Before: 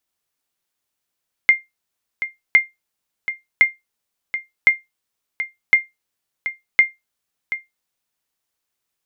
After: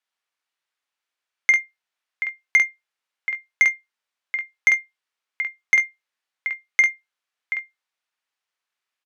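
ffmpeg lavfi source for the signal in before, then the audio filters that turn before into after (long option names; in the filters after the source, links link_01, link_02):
-f lavfi -i "aevalsrc='0.708*(sin(2*PI*2110*mod(t,1.06))*exp(-6.91*mod(t,1.06)/0.18)+0.251*sin(2*PI*2110*max(mod(t,1.06)-0.73,0))*exp(-6.91*max(mod(t,1.06)-0.73,0)/0.18))':duration=6.36:sample_rate=44100"
-filter_complex "[0:a]bandpass=frequency=1800:width_type=q:width=0.7:csg=0,asoftclip=type=tanh:threshold=-7.5dB,asplit=2[link_01][link_02];[link_02]aecho=0:1:48|69:0.631|0.168[link_03];[link_01][link_03]amix=inputs=2:normalize=0"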